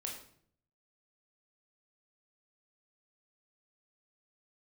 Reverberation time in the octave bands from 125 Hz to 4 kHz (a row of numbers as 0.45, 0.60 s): 0.95, 0.75, 0.65, 0.55, 0.50, 0.45 s